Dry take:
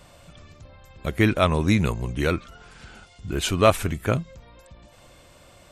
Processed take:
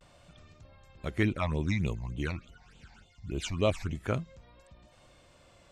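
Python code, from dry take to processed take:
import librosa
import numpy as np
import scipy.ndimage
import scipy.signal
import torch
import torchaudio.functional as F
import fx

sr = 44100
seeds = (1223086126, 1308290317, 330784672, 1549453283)

y = scipy.signal.sosfilt(scipy.signal.butter(2, 8000.0, 'lowpass', fs=sr, output='sos'), x)
y = fx.vibrato(y, sr, rate_hz=0.47, depth_cents=43.0)
y = fx.phaser_stages(y, sr, stages=8, low_hz=390.0, high_hz=1700.0, hz=3.4, feedback_pct=25, at=(1.23, 3.95))
y = F.gain(torch.from_numpy(y), -8.0).numpy()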